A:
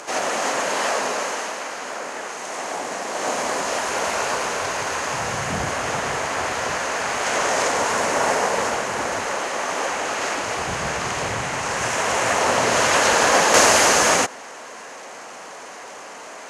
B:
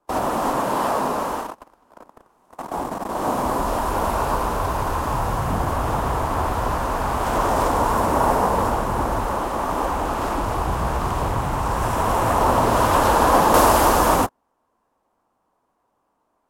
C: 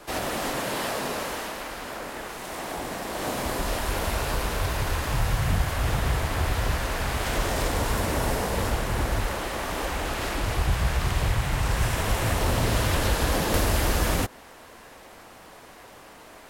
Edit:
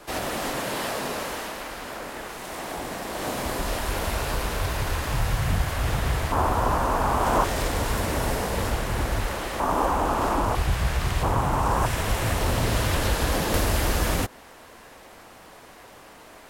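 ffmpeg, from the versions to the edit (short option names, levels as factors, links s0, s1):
-filter_complex "[1:a]asplit=3[s0][s1][s2];[2:a]asplit=4[s3][s4][s5][s6];[s3]atrim=end=6.322[s7];[s0]atrim=start=6.318:end=7.442[s8];[s4]atrim=start=7.438:end=9.602[s9];[s1]atrim=start=9.598:end=10.552[s10];[s5]atrim=start=10.548:end=11.232[s11];[s2]atrim=start=11.228:end=11.862[s12];[s6]atrim=start=11.858[s13];[s7][s8]acrossfade=d=0.004:c1=hsin:c2=hsin[s14];[s14][s9]acrossfade=d=0.004:c1=hsin:c2=hsin[s15];[s15][s10]acrossfade=d=0.004:c1=hsin:c2=hsin[s16];[s16][s11]acrossfade=d=0.004:c1=hsin:c2=hsin[s17];[s17][s12]acrossfade=d=0.004:c1=hsin:c2=hsin[s18];[s18][s13]acrossfade=d=0.004:c1=hsin:c2=hsin"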